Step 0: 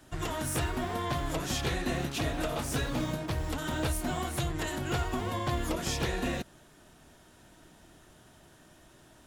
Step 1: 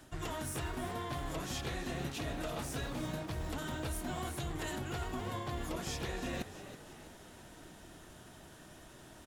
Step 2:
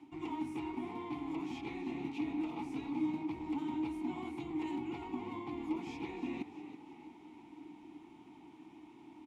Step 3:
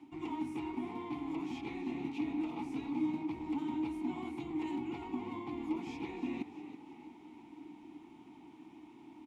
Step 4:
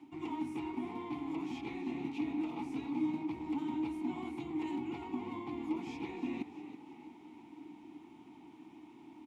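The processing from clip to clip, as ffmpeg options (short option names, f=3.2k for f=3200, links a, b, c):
-filter_complex "[0:a]areverse,acompressor=threshold=-39dB:ratio=6,areverse,asplit=6[a][b][c][d][e][f];[b]adelay=325,afreqshift=53,volume=-12.5dB[g];[c]adelay=650,afreqshift=106,volume=-18.5dB[h];[d]adelay=975,afreqshift=159,volume=-24.5dB[i];[e]adelay=1300,afreqshift=212,volume=-30.6dB[j];[f]adelay=1625,afreqshift=265,volume=-36.6dB[k];[a][g][h][i][j][k]amix=inputs=6:normalize=0,volume=2.5dB"
-filter_complex "[0:a]asplit=3[a][b][c];[a]bandpass=f=300:t=q:w=8,volume=0dB[d];[b]bandpass=f=870:t=q:w=8,volume=-6dB[e];[c]bandpass=f=2.24k:t=q:w=8,volume=-9dB[f];[d][e][f]amix=inputs=3:normalize=0,volume=11dB"
-af "equalizer=f=240:t=o:w=0.4:g=3"
-af "highpass=59"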